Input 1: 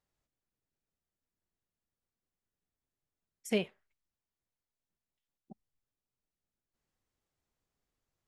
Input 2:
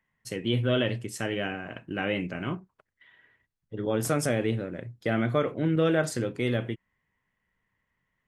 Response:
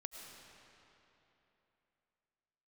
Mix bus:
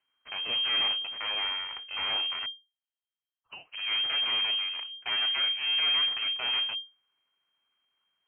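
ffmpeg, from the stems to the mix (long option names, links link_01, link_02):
-filter_complex "[0:a]acompressor=threshold=-33dB:ratio=3,volume=-5.5dB[link_01];[1:a]highpass=130,aeval=exprs='abs(val(0))':channel_layout=same,volume=2dB,asplit=3[link_02][link_03][link_04];[link_02]atrim=end=2.46,asetpts=PTS-STARTPTS,afade=type=out:start_time=2.456:duration=0.004:curve=hsin[link_05];[link_03]atrim=start=2.46:end=3.48,asetpts=PTS-STARTPTS,volume=0[link_06];[link_04]atrim=start=3.48,asetpts=PTS-STARTPTS,afade=type=in:duration=0.004:curve=hsin[link_07];[link_05][link_06][link_07]concat=n=3:v=0:a=1[link_08];[link_01][link_08]amix=inputs=2:normalize=0,equalizer=frequency=180:width_type=o:width=1.8:gain=-11,asoftclip=type=tanh:threshold=-21.5dB,lowpass=frequency=2700:width_type=q:width=0.5098,lowpass=frequency=2700:width_type=q:width=0.6013,lowpass=frequency=2700:width_type=q:width=0.9,lowpass=frequency=2700:width_type=q:width=2.563,afreqshift=-3200"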